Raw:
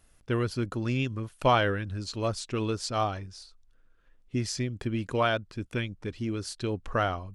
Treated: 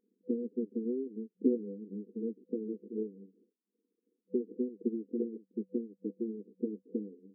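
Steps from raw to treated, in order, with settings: transient shaper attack +8 dB, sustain -8 dB; full-wave rectifier; FFT band-pass 190–500 Hz

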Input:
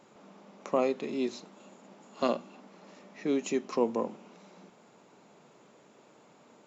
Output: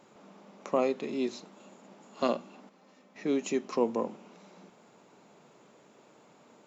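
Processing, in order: 2.69–3.16 s: feedback comb 260 Hz, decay 0.15 s, harmonics all, mix 70%

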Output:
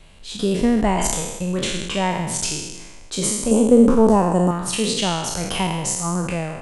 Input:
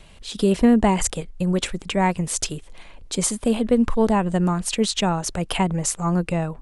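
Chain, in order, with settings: spectral sustain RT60 1.13 s; 3.51–4.51 s: graphic EQ 250/500/1000/2000/4000/8000 Hz +7/+5/+5/-8/-5/+8 dB; trim -3 dB

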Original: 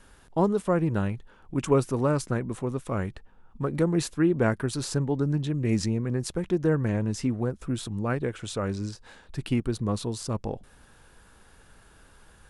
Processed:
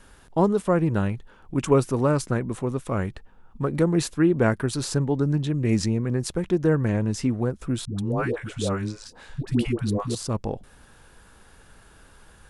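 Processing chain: 7.85–10.15 s: phase dispersion highs, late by 135 ms, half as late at 520 Hz; trim +3 dB

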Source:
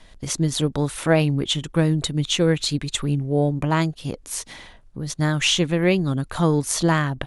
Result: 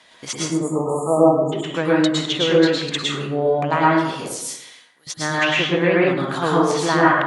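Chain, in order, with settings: frequency weighting A; low-pass that closes with the level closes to 1.8 kHz, closed at -18.5 dBFS; 0.33–1.53 s: spectral selection erased 1.3–6.6 kHz; 4.21–5.07 s: differentiator; plate-style reverb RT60 0.86 s, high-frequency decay 0.5×, pre-delay 95 ms, DRR -5.5 dB; trim +2 dB

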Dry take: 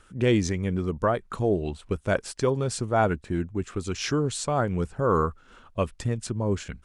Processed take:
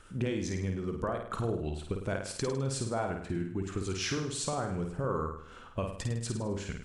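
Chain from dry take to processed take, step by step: compression, threshold -31 dBFS, peak gain reduction 13.5 dB; on a send: flutter echo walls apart 8.9 m, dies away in 0.61 s

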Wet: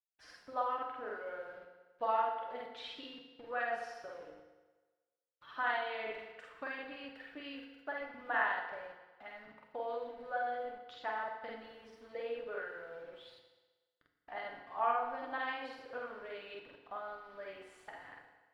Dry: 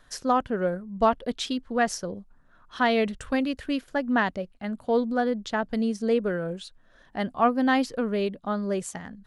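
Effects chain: high-pass 700 Hz 12 dB/octave; treble shelf 9.2 kHz +7.5 dB; word length cut 8-bit, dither none; plain phase-vocoder stretch 2×; distance through air 420 m; FDN reverb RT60 1.3 s, low-frequency decay 0.8×, high-frequency decay 0.9×, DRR 2 dB; trim -1.5 dB

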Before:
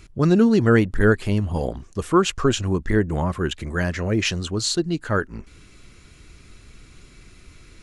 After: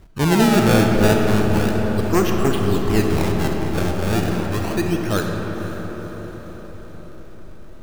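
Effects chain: one-sided wavefolder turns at -13 dBFS; low-pass 2.2 kHz 6 dB/octave; decimation with a swept rate 25×, swing 160% 0.32 Hz; echo that smears into a reverb 517 ms, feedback 55%, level -14 dB; reverberation RT60 5.4 s, pre-delay 5 ms, DRR 1 dB

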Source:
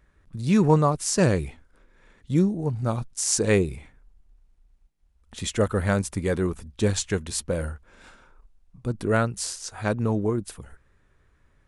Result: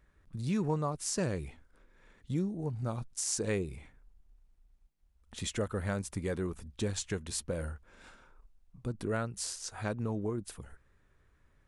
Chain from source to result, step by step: compression 2:1, threshold -29 dBFS, peak gain reduction 9.5 dB; trim -5 dB

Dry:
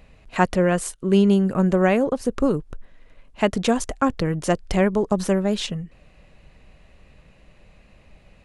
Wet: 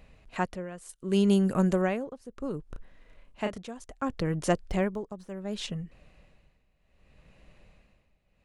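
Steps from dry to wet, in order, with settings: 0.89–1.82 s: treble shelf 4.4 kHz +10.5 dB; 4.68–5.37 s: de-esser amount 75%; tremolo 0.67 Hz, depth 86%; 2.69–3.58 s: doubling 33 ms -5.5 dB; trim -4.5 dB

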